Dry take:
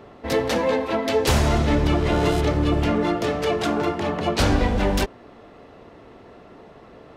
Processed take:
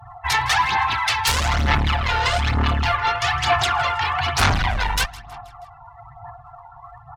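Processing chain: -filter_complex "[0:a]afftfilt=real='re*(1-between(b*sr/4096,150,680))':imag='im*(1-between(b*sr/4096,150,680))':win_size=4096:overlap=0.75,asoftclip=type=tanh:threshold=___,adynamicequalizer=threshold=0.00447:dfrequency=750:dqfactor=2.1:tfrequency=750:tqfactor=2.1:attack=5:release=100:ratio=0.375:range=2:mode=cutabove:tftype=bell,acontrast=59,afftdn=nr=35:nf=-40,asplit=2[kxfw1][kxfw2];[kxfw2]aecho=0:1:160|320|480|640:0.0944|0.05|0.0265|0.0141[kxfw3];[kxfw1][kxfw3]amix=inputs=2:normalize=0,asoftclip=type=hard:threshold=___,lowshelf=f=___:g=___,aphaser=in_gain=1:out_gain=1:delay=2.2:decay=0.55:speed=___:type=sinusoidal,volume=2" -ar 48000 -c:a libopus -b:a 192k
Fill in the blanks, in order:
0.0447, 0.0841, 140, -11, 1.1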